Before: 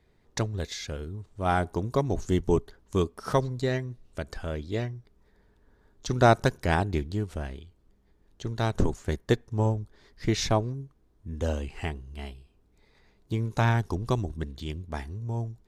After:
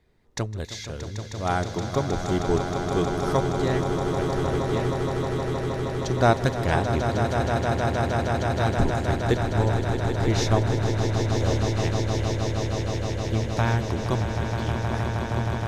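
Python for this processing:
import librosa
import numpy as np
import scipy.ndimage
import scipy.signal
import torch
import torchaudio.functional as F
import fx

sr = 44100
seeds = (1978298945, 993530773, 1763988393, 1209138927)

y = fx.echo_swell(x, sr, ms=157, loudest=8, wet_db=-8.5)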